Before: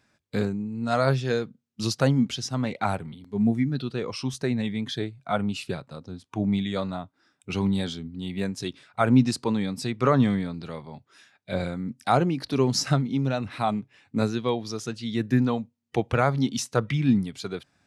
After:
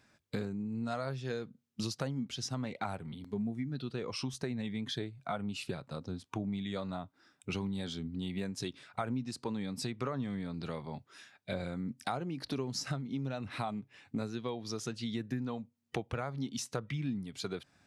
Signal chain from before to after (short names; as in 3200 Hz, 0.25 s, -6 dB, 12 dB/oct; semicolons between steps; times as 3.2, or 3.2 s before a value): compressor 6:1, threshold -34 dBFS, peak gain reduction 19.5 dB